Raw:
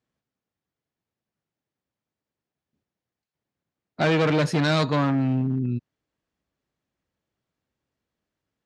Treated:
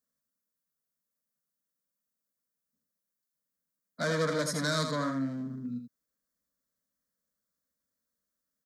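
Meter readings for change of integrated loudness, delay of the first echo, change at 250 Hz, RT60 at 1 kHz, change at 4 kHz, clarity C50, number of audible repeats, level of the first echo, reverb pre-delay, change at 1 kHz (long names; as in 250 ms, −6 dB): −9.0 dB, 82 ms, −10.0 dB, no reverb audible, −5.5 dB, no reverb audible, 1, −6.5 dB, no reverb audible, −8.0 dB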